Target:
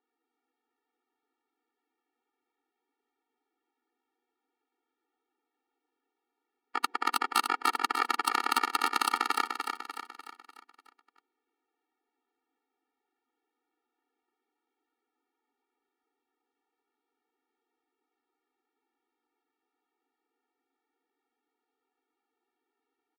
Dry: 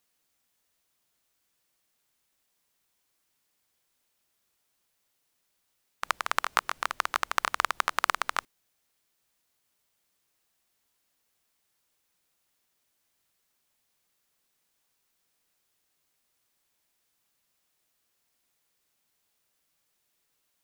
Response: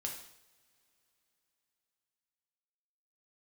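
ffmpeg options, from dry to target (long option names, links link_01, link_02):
-filter_complex "[0:a]atempo=0.89,aeval=exprs='0.794*(cos(1*acos(clip(val(0)/0.794,-1,1)))-cos(1*PI/2))+0.158*(cos(3*acos(clip(val(0)/0.794,-1,1)))-cos(3*PI/2))+0.0398*(cos(4*acos(clip(val(0)/0.794,-1,1)))-cos(4*PI/2))':channel_layout=same,acrossover=split=110|1500[link_01][link_02][link_03];[link_02]asoftclip=type=tanh:threshold=-22.5dB[link_04];[link_01][link_04][link_03]amix=inputs=3:normalize=0,adynamicsmooth=sensitivity=5:basefreq=1600,highshelf=frequency=5100:gain=-6.5,aeval=exprs='0.376*sin(PI/2*3.16*val(0)/0.376)':channel_layout=same,aecho=1:1:297|594|891|1188|1485|1782:0.531|0.26|0.127|0.0625|0.0306|0.015,afftfilt=real='re*eq(mod(floor(b*sr/1024/240),2),1)':imag='im*eq(mod(floor(b*sr/1024/240),2),1)':win_size=1024:overlap=0.75"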